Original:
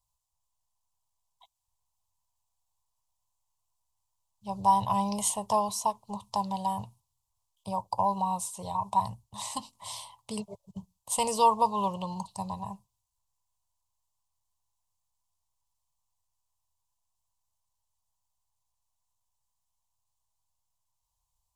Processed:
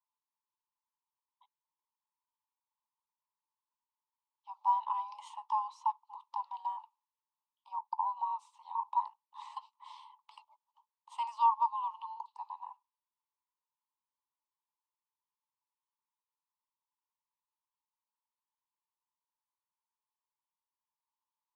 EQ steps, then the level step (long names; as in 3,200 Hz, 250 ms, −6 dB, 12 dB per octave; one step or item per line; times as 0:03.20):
Chebyshev high-pass with heavy ripple 850 Hz, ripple 3 dB
head-to-tape spacing loss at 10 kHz 25 dB
spectral tilt −4 dB per octave
0.0 dB